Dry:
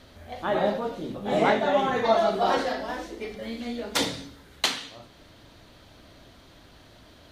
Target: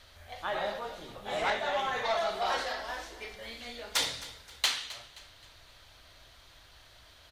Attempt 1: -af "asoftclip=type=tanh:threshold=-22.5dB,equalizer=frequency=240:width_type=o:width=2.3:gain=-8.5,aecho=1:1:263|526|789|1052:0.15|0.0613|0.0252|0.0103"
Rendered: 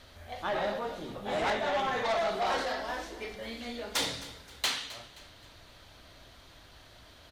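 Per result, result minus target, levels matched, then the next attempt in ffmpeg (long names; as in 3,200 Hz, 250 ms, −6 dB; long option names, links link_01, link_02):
250 Hz band +7.5 dB; soft clipping: distortion +7 dB
-af "asoftclip=type=tanh:threshold=-22.5dB,equalizer=frequency=240:width_type=o:width=2.3:gain=-19,aecho=1:1:263|526|789|1052:0.15|0.0613|0.0252|0.0103"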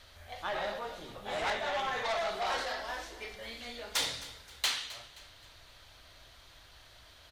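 soft clipping: distortion +7 dB
-af "asoftclip=type=tanh:threshold=-16dB,equalizer=frequency=240:width_type=o:width=2.3:gain=-19,aecho=1:1:263|526|789|1052:0.15|0.0613|0.0252|0.0103"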